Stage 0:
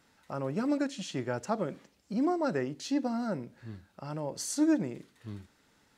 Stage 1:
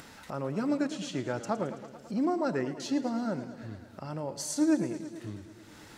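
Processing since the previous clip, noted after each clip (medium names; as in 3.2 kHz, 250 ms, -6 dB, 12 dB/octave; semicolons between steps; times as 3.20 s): upward compressor, threshold -37 dBFS; modulated delay 110 ms, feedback 72%, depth 106 cents, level -13.5 dB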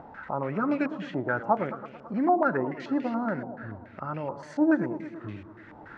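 step-sequenced low-pass 7 Hz 800–2500 Hz; trim +1.5 dB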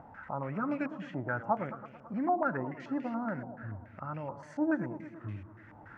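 fifteen-band graphic EQ 100 Hz +7 dB, 400 Hz -6 dB, 4 kHz -9 dB; trim -5 dB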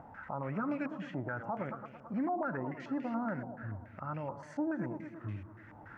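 peak limiter -27 dBFS, peak gain reduction 10.5 dB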